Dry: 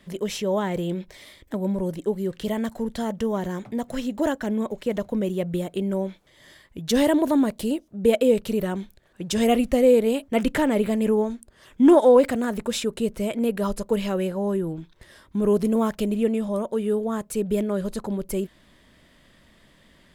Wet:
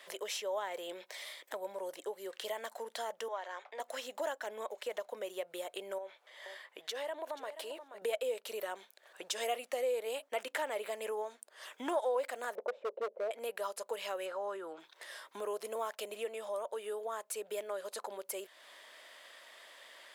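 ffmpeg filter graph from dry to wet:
ffmpeg -i in.wav -filter_complex "[0:a]asettb=1/sr,asplit=3[link_01][link_02][link_03];[link_01]atrim=end=3.284[link_04];[link_02]atrim=start=3.28:end=3.8,asetpts=PTS-STARTPTS,afade=type=in:duration=0.004:curve=qsin,afade=type=out:start_time=0.516:duration=0.004:curve=qsin,agate=range=-33dB:threshold=-39dB:ratio=3:release=100:detection=peak,highpass=610,lowpass=4100[link_05];[link_03]atrim=start=3.796[link_06];[link_04][link_05]acrossfade=duration=0.004:curve1=hsin:curve2=qsin[link_07];[link_07][link_06]acrossfade=duration=0.004:curve1=qsin:curve2=hsin,asettb=1/sr,asplit=3[link_08][link_09][link_10];[link_08]atrim=end=5.984[link_11];[link_09]atrim=start=5.98:end=8.02,asetpts=PTS-STARTPTS,afade=type=in:duration=0.004:curve=qsin,afade=type=out:start_time=2.036:duration=0.004:curve=qsin,bass=frequency=250:gain=-11,treble=frequency=4000:gain=-9,acompressor=threshold=-30dB:ratio=2.5:attack=3.2:release=140:knee=1:detection=peak,aecho=1:1:479:0.168,atrim=end_sample=89964[link_12];[link_10]atrim=start=8.016[link_13];[link_11][link_12]acrossfade=duration=0.004:curve1=hsin:curve2=qsin[link_14];[link_14][link_13]acrossfade=duration=0.004:curve1=qsin:curve2=hsin,asettb=1/sr,asplit=3[link_15][link_16][link_17];[link_15]atrim=end=12.554[link_18];[link_16]atrim=start=12.55:end=13.31,asetpts=PTS-STARTPTS,afade=type=in:duration=0.004:curve=qsin,afade=type=out:start_time=0.756:duration=0.004:curve=qsin,lowpass=frequency=540:width_type=q:width=4.2,asoftclip=type=hard:threshold=-15.5dB[link_19];[link_17]atrim=start=13.306[link_20];[link_18][link_19]acrossfade=duration=0.004:curve1=hsin:curve2=qsin[link_21];[link_21][link_20]acrossfade=duration=0.004:curve1=qsin:curve2=hsin,asettb=1/sr,asplit=3[link_22][link_23][link_24];[link_22]atrim=end=14.264[link_25];[link_23]atrim=start=14.26:end=14.8,asetpts=PTS-STARTPTS,afade=type=in:duration=0.004:curve=qsin,afade=type=out:start_time=0.536:duration=0.004:curve=qsin,lowpass=6600,equalizer=frequency=1300:width_type=o:width=0.37:gain=10[link_26];[link_24]atrim=start=14.796[link_27];[link_25][link_26]acrossfade=duration=0.004:curve1=hsin:curve2=qsin[link_28];[link_28][link_27]acrossfade=duration=0.004:curve1=qsin:curve2=hsin,highpass=frequency=550:width=0.5412,highpass=frequency=550:width=1.3066,acompressor=threshold=-50dB:ratio=2,volume=4.5dB" out.wav

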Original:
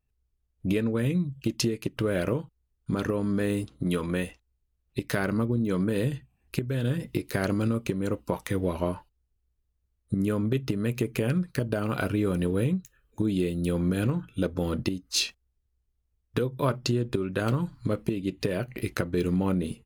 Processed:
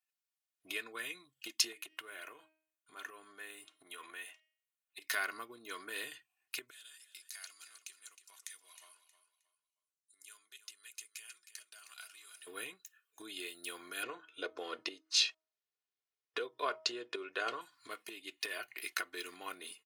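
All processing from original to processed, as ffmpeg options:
ffmpeg -i in.wav -filter_complex "[0:a]asettb=1/sr,asplit=3[link_01][link_02][link_03];[link_01]atrim=end=1.724[link_04];[link_02]atrim=start=1.72:end=5.02,asetpts=PTS-STARTPTS,afade=type=in:duration=0.004:curve=qsin,afade=type=out:start_time=3.296:duration=0.004:curve=qsin,equalizer=frequency=5000:width=3.4:gain=-12,bandreject=frequency=314.4:width_type=h:width=4,bandreject=frequency=628.8:width_type=h:width=4,bandreject=frequency=943.2:width_type=h:width=4,bandreject=frequency=1257.6:width_type=h:width=4,bandreject=frequency=1572:width_type=h:width=4,bandreject=frequency=1886.4:width_type=h:width=4,bandreject=frequency=2200.8:width_type=h:width=4,bandreject=frequency=2515.2:width_type=h:width=4,bandreject=frequency=2829.6:width_type=h:width=4,bandreject=frequency=3144:width_type=h:width=4,bandreject=frequency=3458.4:width_type=h:width=4,bandreject=frequency=3772.8:width_type=h:width=4,bandreject=frequency=4087.2:width_type=h:width=4,bandreject=frequency=4401.6:width_type=h:width=4,bandreject=frequency=4716:width_type=h:width=4,bandreject=frequency=5030.4:width_type=h:width=4,bandreject=frequency=5344.8:width_type=h:width=4,bandreject=frequency=5659.2:width_type=h:width=4,acompressor=threshold=-32dB:ratio=4:attack=3.2:release=140:knee=1:detection=peak[link_05];[link_03]atrim=start=5.016[link_06];[link_04][link_05]acrossfade=duration=0.004:curve1=hsin:curve2=qsin[link_07];[link_07][link_06]acrossfade=duration=0.004:curve1=qsin:curve2=hsin,asettb=1/sr,asplit=3[link_08][link_09][link_10];[link_08]atrim=end=6.704[link_11];[link_09]atrim=start=6.7:end=12.47,asetpts=PTS-STARTPTS,afade=type=in:duration=0.004:curve=qsin,afade=type=out:start_time=5.766:duration=0.004:curve=qsin,bandpass=frequency=7500:width_type=q:width=1.5,aecho=1:1:314|628|942:0.251|0.0678|0.0183,atrim=end_sample=254457[link_12];[link_10]atrim=start=12.466[link_13];[link_11][link_12]acrossfade=duration=0.004:curve1=hsin:curve2=qsin[link_14];[link_14][link_13]acrossfade=duration=0.004:curve1=qsin:curve2=hsin,asettb=1/sr,asplit=3[link_15][link_16][link_17];[link_15]atrim=end=14.034[link_18];[link_16]atrim=start=14.03:end=17.61,asetpts=PTS-STARTPTS,afade=type=in:duration=0.004:curve=qsin,afade=type=out:start_time=3.576:duration=0.004:curve=qsin,lowpass=5400,equalizer=frequency=480:width_type=o:width=0.86:gain=11.5,bandreject=frequency=317.7:width_type=h:width=4,bandreject=frequency=635.4:width_type=h:width=4,bandreject=frequency=953.1:width_type=h:width=4,bandreject=frequency=1270.8:width_type=h:width=4[link_19];[link_17]atrim=start=17.606[link_20];[link_18][link_19]acrossfade=duration=0.004:curve1=hsin:curve2=qsin[link_21];[link_21][link_20]acrossfade=duration=0.004:curve1=qsin:curve2=hsin,highpass=1400,aecho=1:1:2.8:0.64,volume=-2dB" out.wav

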